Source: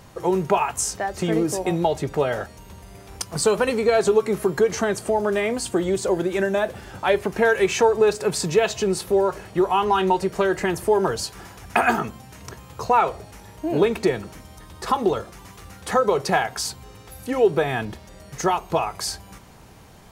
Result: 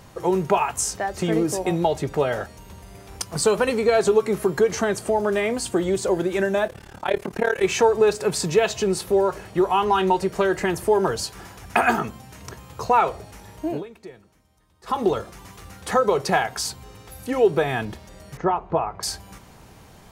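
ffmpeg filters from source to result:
-filter_complex "[0:a]asplit=3[s0][s1][s2];[s0]afade=t=out:st=6.67:d=0.02[s3];[s1]tremolo=f=36:d=0.947,afade=t=in:st=6.67:d=0.02,afade=t=out:st=7.62:d=0.02[s4];[s2]afade=t=in:st=7.62:d=0.02[s5];[s3][s4][s5]amix=inputs=3:normalize=0,asettb=1/sr,asplit=3[s6][s7][s8];[s6]atrim=end=18.374[s9];[s7]atrim=start=18.37:end=19.03,asetpts=PTS-STARTPTS,afade=t=in:d=0.004:c=qsin,afade=t=out:st=0.656:d=0.004:c=qsin,lowpass=1400[s10];[s8]atrim=start=19.026[s11];[s9][s10]acrossfade=d=0.004:c1=hsin:c2=qsin[s12];[s12][s11]acrossfade=d=0.004:c1=qsin:c2=hsin,asplit=3[s13][s14][s15];[s13]atrim=end=13.83,asetpts=PTS-STARTPTS,afade=t=out:st=13.67:d=0.16:silence=0.1[s16];[s14]atrim=start=13.83:end=14.83,asetpts=PTS-STARTPTS,volume=0.1[s17];[s15]atrim=start=14.83,asetpts=PTS-STARTPTS,afade=t=in:d=0.16:silence=0.1[s18];[s16][s17][s18]concat=n=3:v=0:a=1"

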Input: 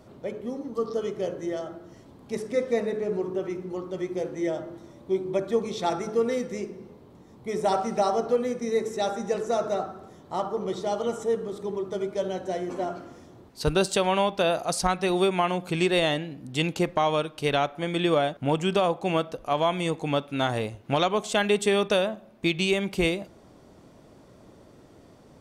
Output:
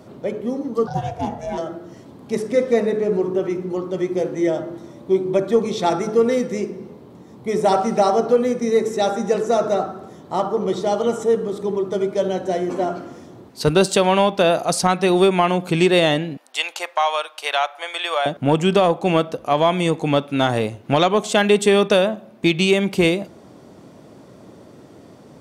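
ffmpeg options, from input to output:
-filter_complex "[0:a]asettb=1/sr,asplit=3[s0][s1][s2];[s0]atrim=end=0.874[s3];[s1]atrim=start=0.87:end=1.58,asetpts=PTS-STARTPTS,afade=t=in:d=0.004:c=qsin,afade=t=out:st=0.706:d=0.004:c=qsin,aeval=exprs='val(0)*sin(2*PI*300*n/s)':c=same[s4];[s2]atrim=start=1.576[s5];[s3][s4]acrossfade=d=0.004:c1=hsin:c2=qsin[s6];[s6][s5]acrossfade=d=0.004:c1=qsin:c2=hsin,asettb=1/sr,asplit=3[s7][s8][s9];[s7]atrim=end=16.374[s10];[s8]atrim=start=16.37:end=18.26,asetpts=PTS-STARTPTS,afade=t=in:d=0.004:c=qsin,afade=t=out:st=1.886:d=0.004:c=qsin,highpass=f=710:w=0.5412,highpass=f=710:w=1.3066[s11];[s9]atrim=start=18.256[s12];[s10][s11]acrossfade=d=0.004:c1=hsin:c2=qsin[s13];[s13][s12]acrossfade=d=0.004:c1=qsin:c2=hsin,highpass=120,lowshelf=f=460:g=3.5,acontrast=69"

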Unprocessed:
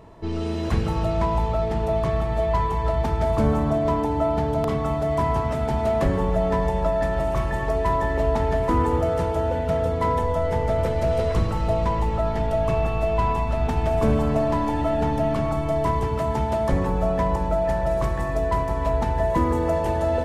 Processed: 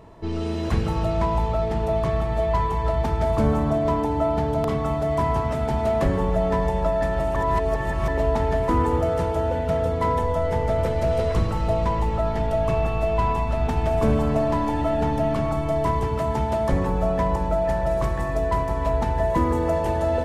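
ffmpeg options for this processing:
-filter_complex "[0:a]asplit=3[s0][s1][s2];[s0]atrim=end=7.362[s3];[s1]atrim=start=7.358:end=8.082,asetpts=PTS-STARTPTS,areverse[s4];[s2]atrim=start=8.078[s5];[s3][s4]acrossfade=d=0.004:c1=hsin:c2=hsin[s6];[s6][s5]acrossfade=d=0.004:c1=hsin:c2=hsin"

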